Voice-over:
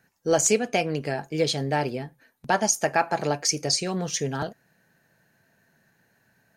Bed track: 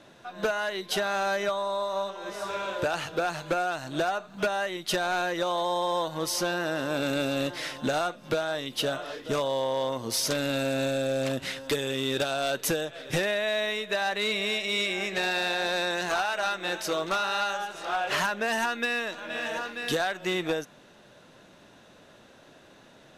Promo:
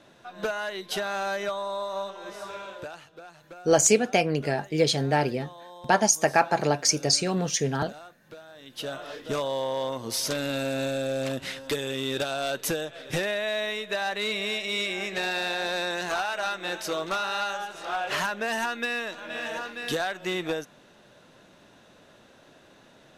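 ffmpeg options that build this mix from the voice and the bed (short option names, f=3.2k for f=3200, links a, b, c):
-filter_complex "[0:a]adelay=3400,volume=1.5dB[a];[1:a]volume=15dB,afade=t=out:st=2.19:d=0.88:silence=0.158489,afade=t=in:st=8.55:d=0.61:silence=0.141254[b];[a][b]amix=inputs=2:normalize=0"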